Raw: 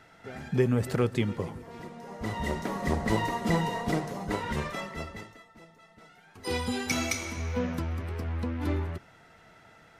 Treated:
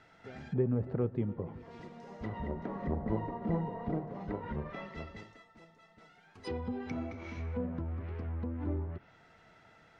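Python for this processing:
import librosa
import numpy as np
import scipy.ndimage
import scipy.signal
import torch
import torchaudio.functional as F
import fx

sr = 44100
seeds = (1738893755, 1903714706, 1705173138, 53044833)

y = scipy.signal.sosfilt(scipy.signal.butter(2, 6200.0, 'lowpass', fs=sr, output='sos'), x)
y = fx.env_lowpass_down(y, sr, base_hz=930.0, full_db=-27.0)
y = fx.dynamic_eq(y, sr, hz=1200.0, q=0.73, threshold_db=-47.0, ratio=4.0, max_db=-3)
y = F.gain(torch.from_numpy(y), -5.0).numpy()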